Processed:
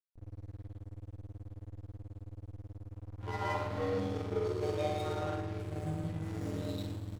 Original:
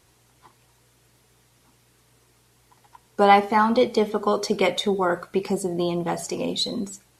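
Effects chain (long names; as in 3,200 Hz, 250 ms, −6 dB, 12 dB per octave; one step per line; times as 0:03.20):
time-frequency cells dropped at random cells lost 34%
high-shelf EQ 7,100 Hz −8.5 dB
comb filter 7 ms, depth 38%
in parallel at −2 dB: downward compressor, threshold −31 dBFS, peak gain reduction 16.5 dB
on the sum: tuned comb filter 83 Hz, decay 1.7 s, harmonics all, mix 100%
time stretch by overlap-add 2×, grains 26 ms
hum with harmonics 100 Hz, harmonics 3, −45 dBFS −8 dB per octave
time stretch by overlap-add 0.5×, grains 108 ms
on a send: repeating echo 114 ms, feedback 57%, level −15 dB
on the sum: reverb whose tail is shaped and stops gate 230 ms rising, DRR −6.5 dB
slack as between gear wheels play −34 dBFS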